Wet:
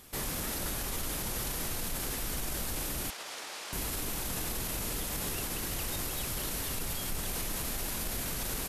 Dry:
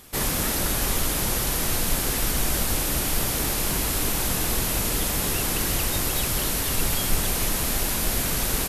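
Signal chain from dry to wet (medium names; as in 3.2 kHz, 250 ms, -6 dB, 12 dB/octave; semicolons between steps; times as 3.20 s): peak limiter -20 dBFS, peak gain reduction 11 dB; 3.10–3.73 s: band-pass 650–6100 Hz; trim -5.5 dB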